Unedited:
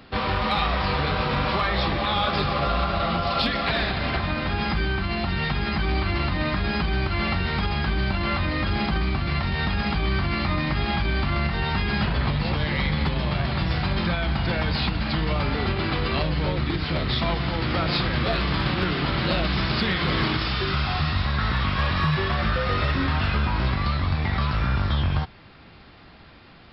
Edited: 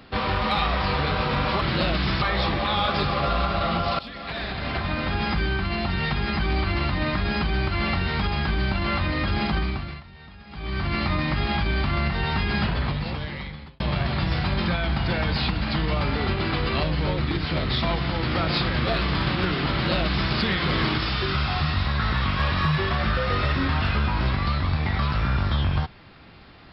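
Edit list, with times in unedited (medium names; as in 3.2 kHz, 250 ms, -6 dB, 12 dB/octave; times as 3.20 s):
3.38–4.40 s: fade in, from -18.5 dB
8.96–10.34 s: dip -20.5 dB, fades 0.46 s
12.00–13.19 s: fade out
19.11–19.72 s: copy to 1.61 s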